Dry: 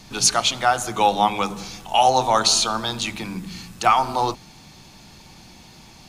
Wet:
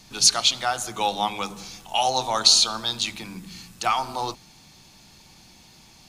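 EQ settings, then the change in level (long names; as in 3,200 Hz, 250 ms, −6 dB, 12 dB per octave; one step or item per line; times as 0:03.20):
high-shelf EQ 2,800 Hz +6 dB
dynamic equaliser 4,200 Hz, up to +7 dB, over −30 dBFS, Q 1.5
−7.5 dB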